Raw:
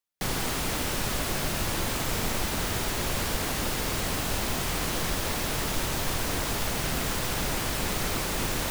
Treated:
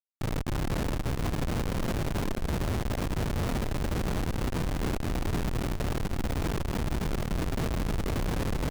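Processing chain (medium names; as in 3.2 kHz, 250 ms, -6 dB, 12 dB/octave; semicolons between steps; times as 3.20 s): one-bit delta coder 32 kbps, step -41.5 dBFS; low-pass 2.2 kHz 12 dB/octave; bass shelf 370 Hz +7.5 dB; peak limiter -21 dBFS, peak gain reduction 8.5 dB; Schmitt trigger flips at -32 dBFS; on a send: delay 485 ms -11.5 dB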